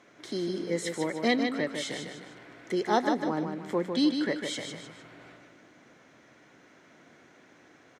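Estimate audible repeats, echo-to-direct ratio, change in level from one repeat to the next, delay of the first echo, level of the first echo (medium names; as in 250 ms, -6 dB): 3, -5.5 dB, -8.0 dB, 152 ms, -6.0 dB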